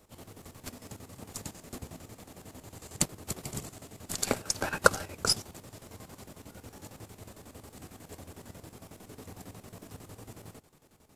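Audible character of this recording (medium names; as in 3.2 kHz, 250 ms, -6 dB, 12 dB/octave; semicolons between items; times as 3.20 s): chopped level 11 Hz, depth 65%, duty 60%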